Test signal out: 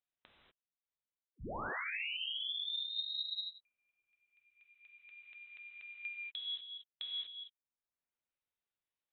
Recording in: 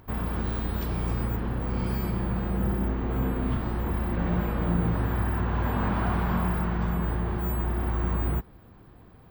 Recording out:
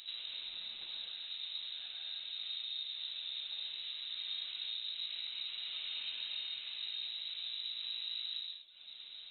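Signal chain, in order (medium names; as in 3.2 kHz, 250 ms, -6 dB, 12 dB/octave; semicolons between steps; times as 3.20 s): reverb removal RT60 0.88 s; compression 4:1, threshold -46 dBFS; gated-style reverb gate 270 ms flat, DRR -2.5 dB; frequency inversion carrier 3.9 kHz; trim -1 dB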